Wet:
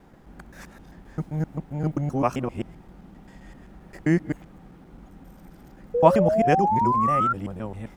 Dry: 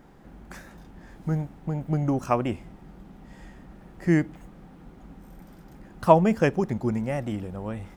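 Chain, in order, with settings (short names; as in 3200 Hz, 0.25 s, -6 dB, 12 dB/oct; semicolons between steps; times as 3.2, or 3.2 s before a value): local time reversal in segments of 0.131 s; painted sound rise, 5.94–7.33, 470–1400 Hz -22 dBFS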